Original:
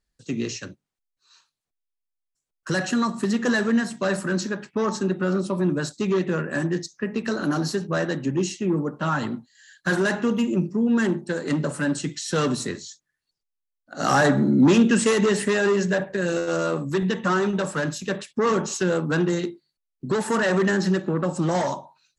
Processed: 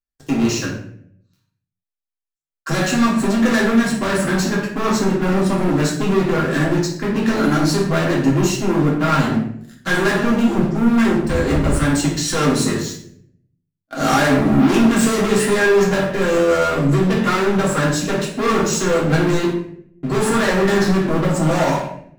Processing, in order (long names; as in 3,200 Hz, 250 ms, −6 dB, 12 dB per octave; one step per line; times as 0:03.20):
0:11.22–0:11.81: sub-octave generator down 2 octaves, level +2 dB
parametric band 4,800 Hz −2.5 dB 1.9 octaves
leveller curve on the samples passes 5
convolution reverb RT60 0.60 s, pre-delay 3 ms, DRR −4 dB
level −10.5 dB